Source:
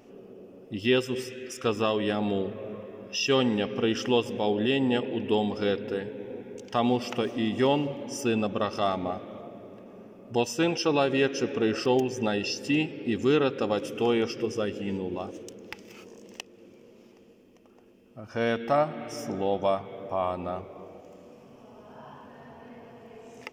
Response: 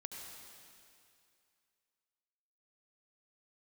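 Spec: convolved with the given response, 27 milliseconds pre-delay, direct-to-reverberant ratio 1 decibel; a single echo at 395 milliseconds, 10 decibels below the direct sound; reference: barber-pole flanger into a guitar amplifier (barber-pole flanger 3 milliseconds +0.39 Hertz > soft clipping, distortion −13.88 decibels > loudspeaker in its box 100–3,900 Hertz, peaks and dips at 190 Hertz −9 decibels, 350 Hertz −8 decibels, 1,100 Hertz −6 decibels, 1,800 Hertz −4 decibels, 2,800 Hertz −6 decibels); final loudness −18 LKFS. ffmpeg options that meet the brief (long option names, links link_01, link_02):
-filter_complex "[0:a]aecho=1:1:395:0.316,asplit=2[link_01][link_02];[1:a]atrim=start_sample=2205,adelay=27[link_03];[link_02][link_03]afir=irnorm=-1:irlink=0,volume=1.5dB[link_04];[link_01][link_04]amix=inputs=2:normalize=0,asplit=2[link_05][link_06];[link_06]adelay=3,afreqshift=0.39[link_07];[link_05][link_07]amix=inputs=2:normalize=1,asoftclip=threshold=-22dB,highpass=100,equalizer=frequency=190:width_type=q:width=4:gain=-9,equalizer=frequency=350:width_type=q:width=4:gain=-8,equalizer=frequency=1100:width_type=q:width=4:gain=-6,equalizer=frequency=1800:width_type=q:width=4:gain=-4,equalizer=frequency=2800:width_type=q:width=4:gain=-6,lowpass=frequency=3900:width=0.5412,lowpass=frequency=3900:width=1.3066,volume=15.5dB"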